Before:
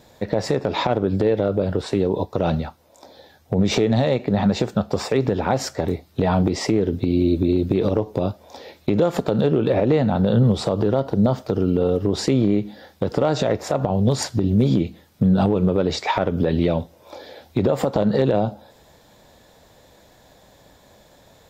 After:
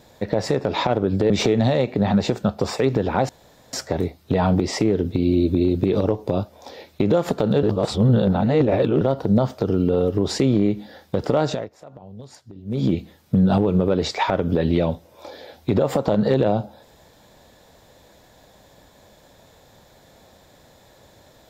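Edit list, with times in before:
0:01.30–0:03.62: remove
0:05.61: splice in room tone 0.44 s
0:09.51–0:10.89: reverse
0:13.31–0:14.79: duck −21 dB, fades 0.26 s

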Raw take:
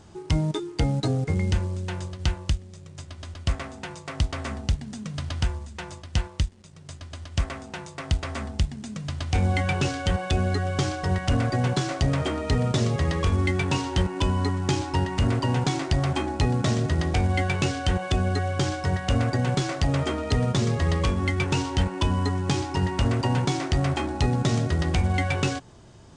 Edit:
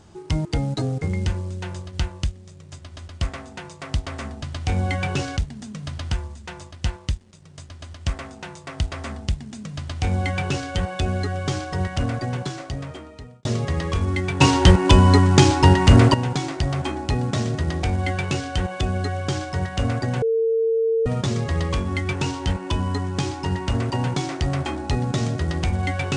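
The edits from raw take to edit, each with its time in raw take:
0:00.45–0:00.71: remove
0:09.08–0:10.03: duplicate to 0:04.68
0:11.17–0:12.76: fade out
0:13.72–0:15.45: clip gain +11 dB
0:19.53–0:20.37: beep over 452 Hz −17 dBFS

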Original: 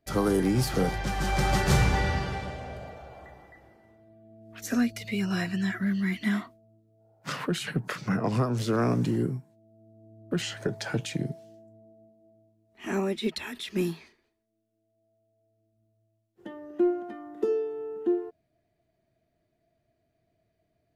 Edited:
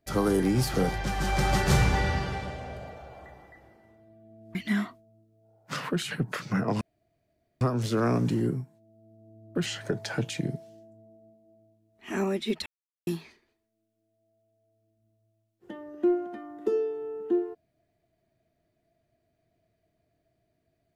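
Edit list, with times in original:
0:04.55–0:06.11: remove
0:08.37: splice in room tone 0.80 s
0:13.42–0:13.83: silence

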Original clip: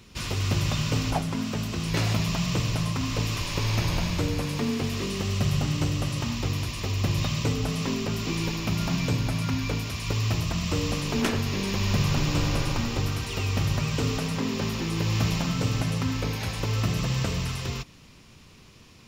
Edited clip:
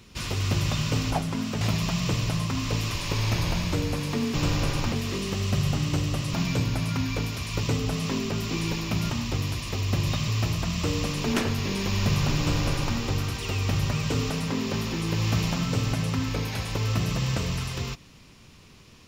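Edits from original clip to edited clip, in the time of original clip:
0:01.61–0:02.07: remove
0:06.21–0:07.39: swap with 0:08.86–0:10.16
0:12.26–0:12.84: duplicate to 0:04.80

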